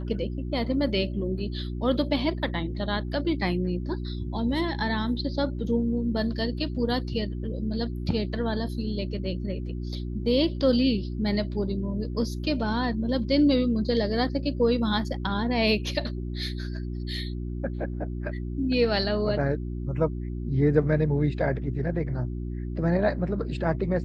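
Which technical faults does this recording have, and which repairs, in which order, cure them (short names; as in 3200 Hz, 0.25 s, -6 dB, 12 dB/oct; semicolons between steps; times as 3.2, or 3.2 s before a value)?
hum 60 Hz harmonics 6 -32 dBFS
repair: de-hum 60 Hz, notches 6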